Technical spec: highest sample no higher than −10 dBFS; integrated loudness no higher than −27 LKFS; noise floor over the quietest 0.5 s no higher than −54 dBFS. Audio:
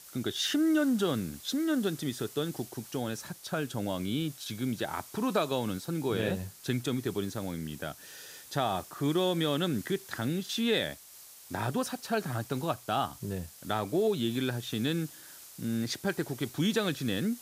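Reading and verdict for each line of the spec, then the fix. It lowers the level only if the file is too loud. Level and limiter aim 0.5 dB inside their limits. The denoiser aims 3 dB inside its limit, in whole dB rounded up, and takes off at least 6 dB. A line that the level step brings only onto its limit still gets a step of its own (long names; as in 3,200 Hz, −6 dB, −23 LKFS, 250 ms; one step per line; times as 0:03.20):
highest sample −14.5 dBFS: in spec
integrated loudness −32.0 LKFS: in spec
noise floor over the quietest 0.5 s −52 dBFS: out of spec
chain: broadband denoise 6 dB, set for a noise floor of −52 dBFS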